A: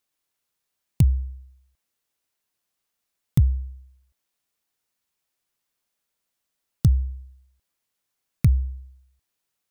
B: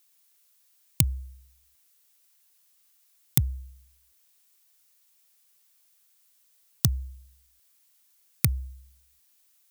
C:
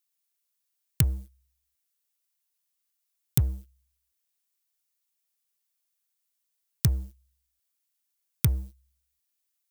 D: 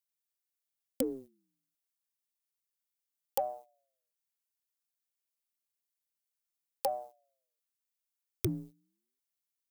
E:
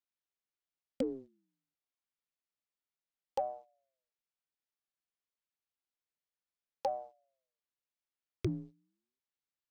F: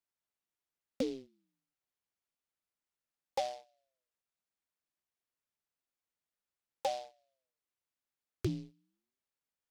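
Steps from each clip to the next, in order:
spectral tilt +3.5 dB per octave; level +3.5 dB
leveller curve on the samples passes 3; level −9 dB
ring modulator whose carrier an LFO sweeps 450 Hz, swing 50%, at 0.29 Hz; level −6.5 dB
high-frequency loss of the air 150 metres; level −1 dB
short delay modulated by noise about 3,600 Hz, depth 0.056 ms

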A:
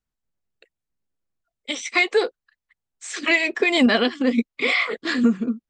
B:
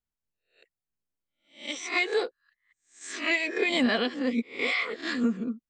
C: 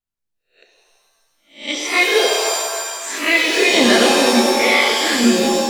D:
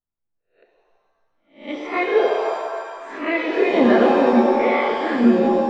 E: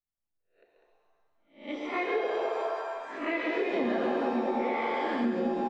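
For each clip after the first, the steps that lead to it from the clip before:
peak hold with a rise ahead of every peak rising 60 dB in 0.37 s; level −8.5 dB
automatic gain control gain up to 12 dB; reverb with rising layers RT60 1.7 s, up +7 semitones, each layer −2 dB, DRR 1 dB; level −2 dB
low-pass filter 1,200 Hz 12 dB per octave
loudspeakers that aren't time-aligned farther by 47 metres −7 dB, 68 metres −6 dB; downward compressor 4 to 1, threshold −19 dBFS, peak gain reduction 9 dB; level −7.5 dB

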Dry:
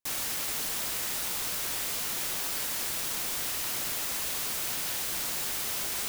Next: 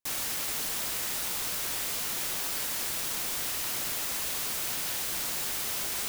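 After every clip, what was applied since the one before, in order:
no processing that can be heard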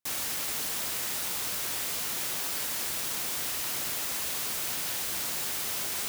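high-pass filter 55 Hz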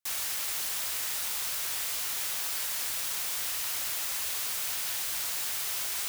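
parametric band 230 Hz −13 dB 2.4 octaves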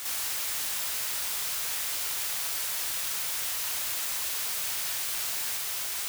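backwards echo 516 ms −5 dB

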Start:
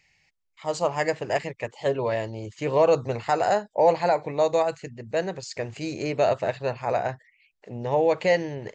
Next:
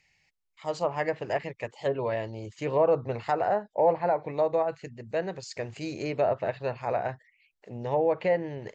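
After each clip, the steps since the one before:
treble cut that deepens with the level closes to 1,500 Hz, closed at −18 dBFS
level −3.5 dB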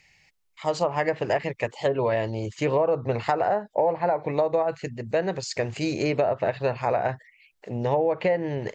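downward compressor 6 to 1, threshold −28 dBFS, peak gain reduction 10 dB
level +8.5 dB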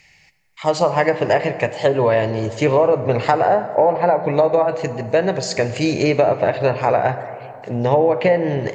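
dense smooth reverb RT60 2.7 s, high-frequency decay 0.45×, DRR 10.5 dB
level +7.5 dB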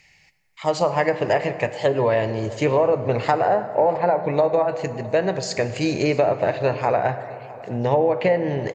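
single-tap delay 663 ms −21.5 dB
level −3.5 dB

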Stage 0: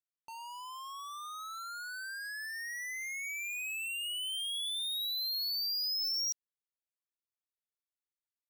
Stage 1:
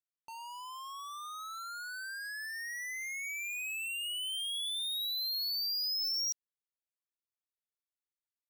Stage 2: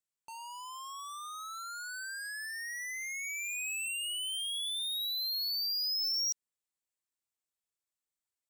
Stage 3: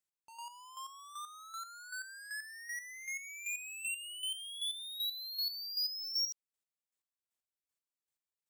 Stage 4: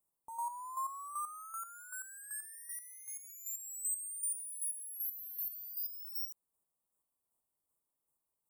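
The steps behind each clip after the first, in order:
no processing that can be heard
parametric band 7,800 Hz +8 dB 0.44 octaves
square-wave tremolo 2.6 Hz, depth 65%, duty 25%
Chebyshev band-stop filter 1,100–8,600 Hz, order 3; level +9.5 dB

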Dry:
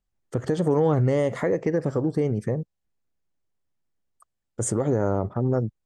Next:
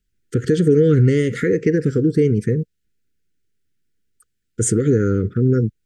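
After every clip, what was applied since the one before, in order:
Chebyshev band-stop filter 470–1,400 Hz, order 4
level +8.5 dB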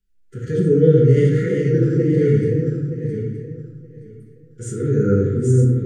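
feedback delay that plays each chunk backwards 461 ms, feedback 41%, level −4 dB
harmonic and percussive parts rebalanced percussive −15 dB
rectangular room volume 150 cubic metres, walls mixed, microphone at 1.1 metres
level −4 dB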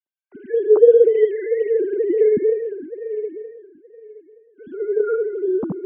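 three sine waves on the formant tracks
level −1.5 dB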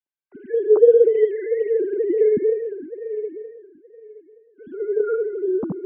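high-frequency loss of the air 200 metres
level −1 dB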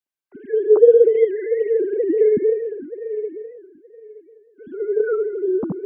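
wow of a warped record 78 rpm, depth 100 cents
level +1.5 dB

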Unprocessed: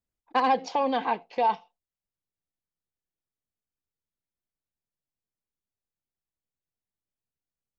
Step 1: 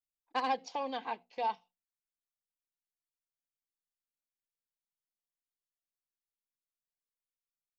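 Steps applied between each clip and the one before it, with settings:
high-shelf EQ 3,400 Hz +11 dB
mains-hum notches 60/120/180/240 Hz
expander for the loud parts 1.5 to 1, over −34 dBFS
level −9 dB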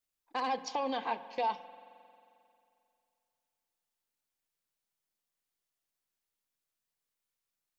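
brickwall limiter −30.5 dBFS, peak gain reduction 10 dB
spring reverb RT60 2.6 s, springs 44 ms, chirp 40 ms, DRR 14 dB
level +6.5 dB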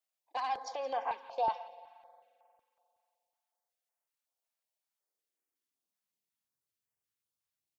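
high-pass filter sweep 630 Hz → 91 Hz, 0:04.80–0:06.69
repeating echo 171 ms, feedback 42%, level −18 dB
notch on a step sequencer 5.4 Hz 340–3,900 Hz
level −3.5 dB

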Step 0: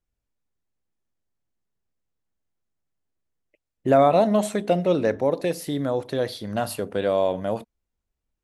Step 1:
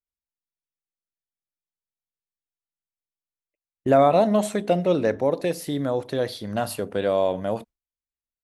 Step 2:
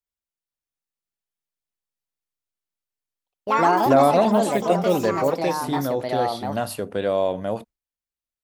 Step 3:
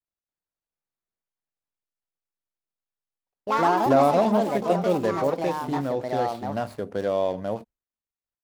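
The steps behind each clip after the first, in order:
noise gate with hold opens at −29 dBFS
delay with pitch and tempo change per echo 519 ms, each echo +4 semitones, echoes 3
running median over 15 samples; level −2.5 dB

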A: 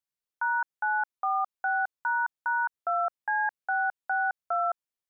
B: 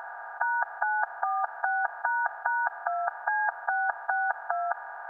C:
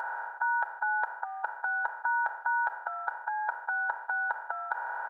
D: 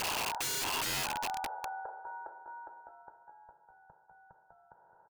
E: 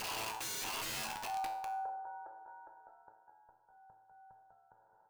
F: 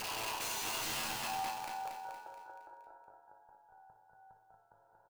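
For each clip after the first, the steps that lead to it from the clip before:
compressor on every frequency bin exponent 0.2; high-pass filter 380 Hz 6 dB per octave; notch filter 1,300 Hz, Q 7.5
reversed playback; downward compressor, threshold −34 dBFS, peak gain reduction 11.5 dB; reversed playback; comb filter 2.1 ms, depth 79%; level +3.5 dB
low-pass filter sweep 850 Hz → 190 Hz, 0:00.60–0:03.49; repeating echo 213 ms, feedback 59%, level −10 dB; wrap-around overflow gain 29.5 dB
tuned comb filter 110 Hz, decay 0.58 s, harmonics all, mix 80%; level +4 dB
repeating echo 233 ms, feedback 48%, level −3 dB

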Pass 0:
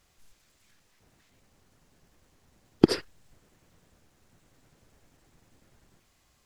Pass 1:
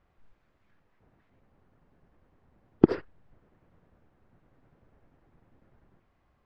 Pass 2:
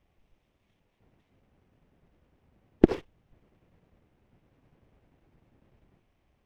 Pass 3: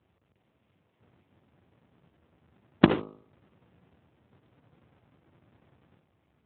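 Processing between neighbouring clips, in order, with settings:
low-pass filter 1,500 Hz 12 dB per octave
lower of the sound and its delayed copy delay 0.33 ms
each half-wave held at its own peak; hum removal 51.97 Hz, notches 25; Speex 15 kbit/s 8,000 Hz

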